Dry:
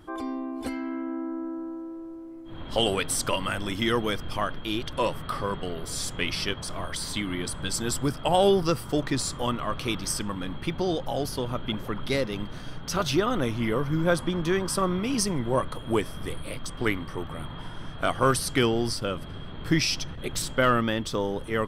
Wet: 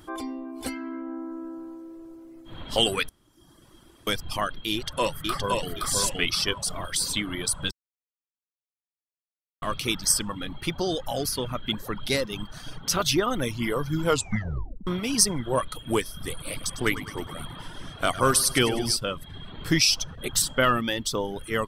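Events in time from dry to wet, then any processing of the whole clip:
0:03.09–0:04.07: fill with room tone
0:04.72–0:05.73: delay throw 520 ms, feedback 35%, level −2 dB
0:07.71–0:09.62: silence
0:14.03: tape stop 0.84 s
0:16.29–0:18.97: repeating echo 102 ms, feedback 56%, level −8 dB
whole clip: high-shelf EQ 3,400 Hz +10.5 dB; reverb reduction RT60 0.79 s

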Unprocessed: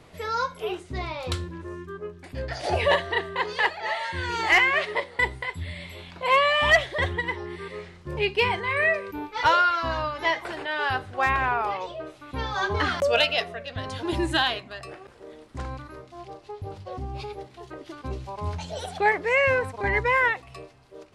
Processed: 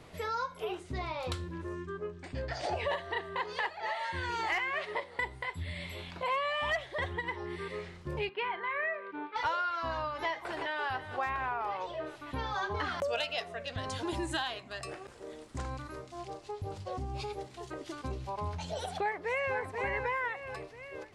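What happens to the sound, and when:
0:01.73–0:02.88: linear-phase brick-wall low-pass 9,100 Hz
0:08.29–0:09.36: loudspeaker in its box 330–3,200 Hz, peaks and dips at 470 Hz −5 dB, 780 Hz −5 dB, 1,400 Hz +4 dB, 2,600 Hz −5 dB
0:10.28–0:10.83: delay throw 330 ms, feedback 70%, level −13 dB
0:13.08–0:18.12: parametric band 7,600 Hz +8 dB 1 octave
0:18.79–0:19.57: delay throw 490 ms, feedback 35%, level −7 dB
whole clip: dynamic equaliser 900 Hz, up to +4 dB, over −37 dBFS, Q 0.99; downward compressor 3 to 1, threshold −33 dBFS; level −1.5 dB

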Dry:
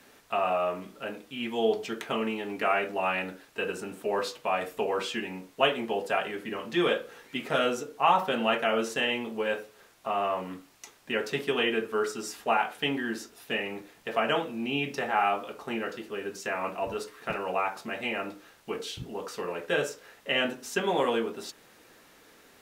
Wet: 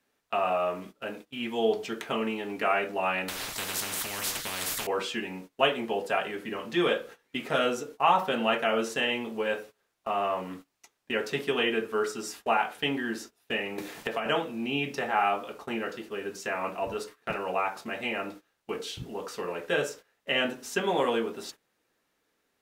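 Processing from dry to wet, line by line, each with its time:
0:03.28–0:04.87: every bin compressed towards the loudest bin 10 to 1
0:13.78–0:14.26: multiband upward and downward compressor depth 100%
whole clip: noise gate −44 dBFS, range −19 dB

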